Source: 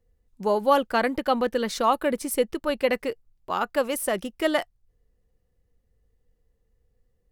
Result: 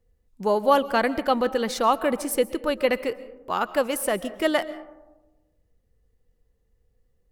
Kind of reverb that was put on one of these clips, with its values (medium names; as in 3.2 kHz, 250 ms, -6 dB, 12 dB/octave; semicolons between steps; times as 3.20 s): algorithmic reverb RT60 1.1 s, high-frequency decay 0.3×, pre-delay 95 ms, DRR 15.5 dB; trim +1 dB